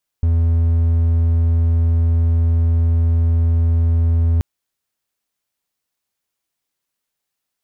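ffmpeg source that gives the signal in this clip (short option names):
-f lavfi -i "aevalsrc='0.316*(1-4*abs(mod(83.1*t+0.25,1)-0.5))':d=4.18:s=44100"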